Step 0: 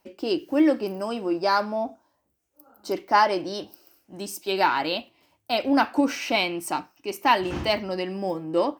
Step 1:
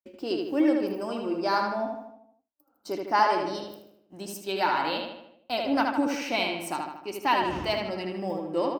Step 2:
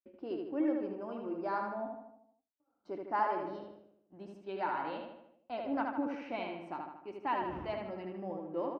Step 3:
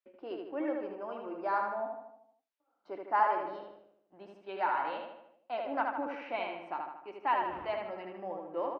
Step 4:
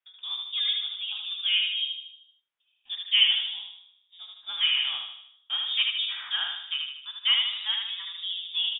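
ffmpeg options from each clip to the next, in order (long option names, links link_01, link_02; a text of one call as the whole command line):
ffmpeg -i in.wav -filter_complex "[0:a]agate=range=-33dB:threshold=-46dB:ratio=3:detection=peak,asplit=2[link_01][link_02];[link_02]adelay=77,lowpass=frequency=4100:poles=1,volume=-3dB,asplit=2[link_03][link_04];[link_04]adelay=77,lowpass=frequency=4100:poles=1,volume=0.54,asplit=2[link_05][link_06];[link_06]adelay=77,lowpass=frequency=4100:poles=1,volume=0.54,asplit=2[link_07][link_08];[link_08]adelay=77,lowpass=frequency=4100:poles=1,volume=0.54,asplit=2[link_09][link_10];[link_10]adelay=77,lowpass=frequency=4100:poles=1,volume=0.54,asplit=2[link_11][link_12];[link_12]adelay=77,lowpass=frequency=4100:poles=1,volume=0.54,asplit=2[link_13][link_14];[link_14]adelay=77,lowpass=frequency=4100:poles=1,volume=0.54[link_15];[link_03][link_05][link_07][link_09][link_11][link_13][link_15]amix=inputs=7:normalize=0[link_16];[link_01][link_16]amix=inputs=2:normalize=0,volume=-5dB" out.wav
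ffmpeg -i in.wav -af "lowpass=1700,volume=-9dB" out.wav
ffmpeg -i in.wav -filter_complex "[0:a]acrossover=split=470 3900:gain=0.2 1 0.224[link_01][link_02][link_03];[link_01][link_02][link_03]amix=inputs=3:normalize=0,volume=5dB" out.wav
ffmpeg -i in.wav -af "tremolo=f=210:d=0.182,lowpass=frequency=3300:width_type=q:width=0.5098,lowpass=frequency=3300:width_type=q:width=0.6013,lowpass=frequency=3300:width_type=q:width=0.9,lowpass=frequency=3300:width_type=q:width=2.563,afreqshift=-3900,volume=7dB" out.wav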